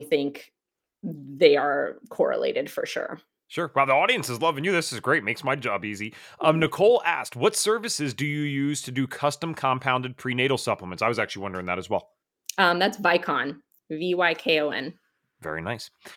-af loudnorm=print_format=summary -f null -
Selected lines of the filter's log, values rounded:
Input Integrated:    -24.8 LUFS
Input True Peak:      -2.5 dBTP
Input LRA:             3.8 LU
Input Threshold:     -35.4 LUFS